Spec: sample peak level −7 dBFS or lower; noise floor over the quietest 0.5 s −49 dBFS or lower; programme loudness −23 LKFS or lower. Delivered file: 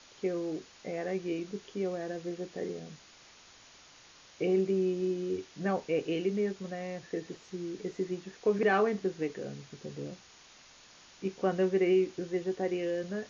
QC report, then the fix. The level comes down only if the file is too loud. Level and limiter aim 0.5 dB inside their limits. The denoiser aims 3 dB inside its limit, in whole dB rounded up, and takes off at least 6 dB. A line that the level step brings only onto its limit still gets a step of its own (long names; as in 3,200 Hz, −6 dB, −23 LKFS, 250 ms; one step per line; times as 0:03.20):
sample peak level −16.0 dBFS: in spec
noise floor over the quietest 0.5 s −57 dBFS: in spec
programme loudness −33.0 LKFS: in spec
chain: no processing needed